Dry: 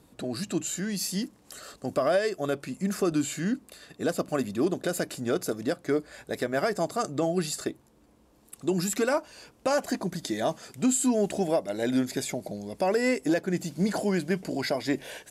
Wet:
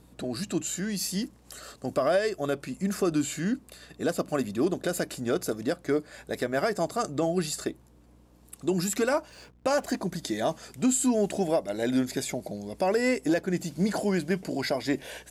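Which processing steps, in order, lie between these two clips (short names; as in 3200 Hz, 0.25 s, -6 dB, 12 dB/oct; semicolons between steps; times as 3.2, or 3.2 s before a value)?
9.29–9.97 backlash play -51 dBFS; hum 60 Hz, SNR 30 dB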